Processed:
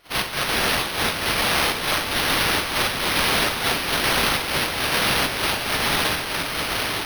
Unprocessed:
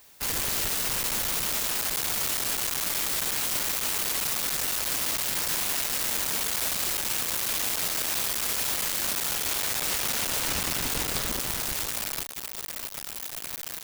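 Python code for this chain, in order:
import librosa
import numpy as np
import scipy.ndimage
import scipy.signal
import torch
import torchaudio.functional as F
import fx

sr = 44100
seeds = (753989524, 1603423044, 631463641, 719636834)

p1 = fx.tracing_dist(x, sr, depth_ms=0.11)
p2 = scipy.signal.sosfilt(scipy.signal.butter(2, 1400.0, 'highpass', fs=sr, output='sos'), p1)
p3 = fx.high_shelf(p2, sr, hz=4600.0, db=11.5)
p4 = fx.rider(p3, sr, range_db=3, speed_s=0.5)
p5 = p3 + F.gain(torch.from_numpy(p4), 1.5).numpy()
p6 = 10.0 ** (-7.0 / 20.0) * np.tanh(p5 / 10.0 ** (-7.0 / 20.0))
p7 = fx.step_gate(p6, sr, bpm=138, pattern='.xx...x.xxxxxx..', floor_db=-12.0, edge_ms=4.5)
p8 = fx.stretch_vocoder(p7, sr, factor=0.51)
p9 = p8 + fx.echo_diffused(p8, sr, ms=757, feedback_pct=47, wet_db=-5.5, dry=0)
p10 = fx.rev_schroeder(p9, sr, rt60_s=0.32, comb_ms=32, drr_db=-6.5)
p11 = np.repeat(p10[::6], 6)[:len(p10)]
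y = F.gain(torch.from_numpy(p11), -8.5).numpy()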